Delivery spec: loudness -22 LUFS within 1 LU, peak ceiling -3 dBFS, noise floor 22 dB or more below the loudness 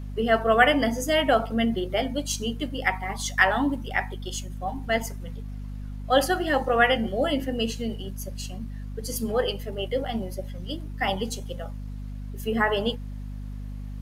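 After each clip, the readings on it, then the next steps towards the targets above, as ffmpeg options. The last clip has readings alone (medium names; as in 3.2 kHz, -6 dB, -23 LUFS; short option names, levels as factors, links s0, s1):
hum 50 Hz; highest harmonic 250 Hz; hum level -32 dBFS; loudness -25.5 LUFS; peak level -5.0 dBFS; loudness target -22.0 LUFS
-> -af "bandreject=f=50:t=h:w=6,bandreject=f=100:t=h:w=6,bandreject=f=150:t=h:w=6,bandreject=f=200:t=h:w=6,bandreject=f=250:t=h:w=6"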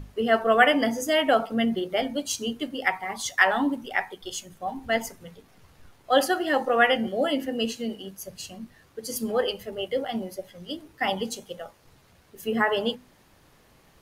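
hum not found; loudness -25.5 LUFS; peak level -5.0 dBFS; loudness target -22.0 LUFS
-> -af "volume=1.5,alimiter=limit=0.708:level=0:latency=1"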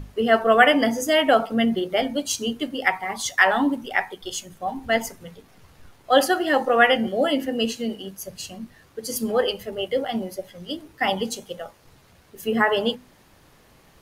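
loudness -22.0 LUFS; peak level -3.0 dBFS; noise floor -55 dBFS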